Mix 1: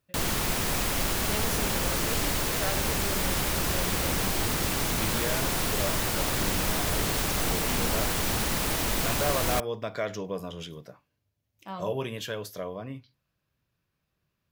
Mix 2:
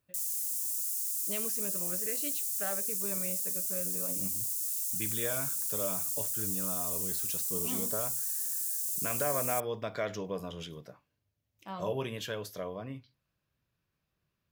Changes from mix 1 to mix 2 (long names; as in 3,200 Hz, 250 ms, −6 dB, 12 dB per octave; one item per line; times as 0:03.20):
speech −3.0 dB
background: add inverse Chebyshev high-pass filter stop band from 1,300 Hz, stop band 80 dB